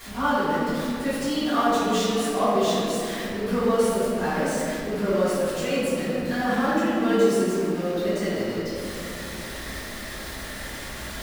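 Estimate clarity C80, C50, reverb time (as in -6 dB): -2.0 dB, -4.5 dB, 2.9 s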